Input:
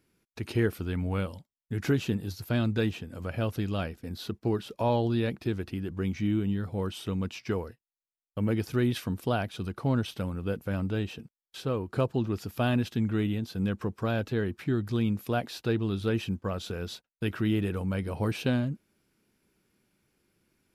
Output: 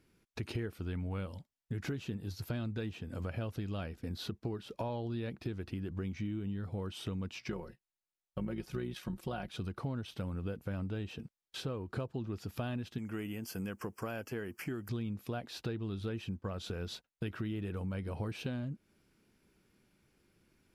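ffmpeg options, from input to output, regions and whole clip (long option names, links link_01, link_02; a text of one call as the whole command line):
ffmpeg -i in.wav -filter_complex "[0:a]asettb=1/sr,asplit=3[link_01][link_02][link_03];[link_01]atrim=end=7.484[link_04];[link_02]atrim=start=7.48:end=9.5,asetpts=PTS-STARTPTS,afade=type=in:duration=0.004:curve=qsin,afade=type=out:start_time=2.016:duration=0.004:curve=qsin,tremolo=f=60:d=0.571,aecho=1:1:5.5:0.61,atrim=end_sample=89082[link_05];[link_03]atrim=start=9.496[link_06];[link_04][link_05]acrossfade=duration=0.004:curve1=hsin:curve2=qsin[link_07];[link_07][link_06]acrossfade=duration=0.004:curve1=qsin:curve2=hsin,asettb=1/sr,asplit=3[link_08][link_09][link_10];[link_08]atrim=end=12.984[link_11];[link_09]atrim=start=12.98:end=14.89,asetpts=PTS-STARTPTS,afade=type=in:duration=0.004:curve=qsin,afade=type=out:start_time=1.906:duration=0.004:curve=qsin,asuperstop=centerf=3800:order=4:qfactor=2.4,aemphasis=mode=production:type=bsi[link_12];[link_10]atrim=start=14.886[link_13];[link_11][link_12]acrossfade=duration=0.004:curve1=hsin:curve2=qsin[link_14];[link_14][link_13]acrossfade=duration=0.004:curve1=qsin:curve2=hsin,highshelf=frequency=11000:gain=-8.5,acompressor=threshold=-38dB:ratio=5,lowshelf=frequency=76:gain=5.5,volume=1dB" out.wav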